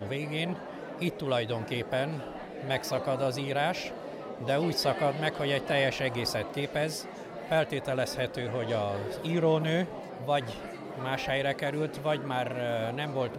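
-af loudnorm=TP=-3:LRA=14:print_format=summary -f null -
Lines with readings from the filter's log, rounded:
Input Integrated:    -31.1 LUFS
Input True Peak:     -13.7 dBTP
Input LRA:             2.3 LU
Input Threshold:     -41.2 LUFS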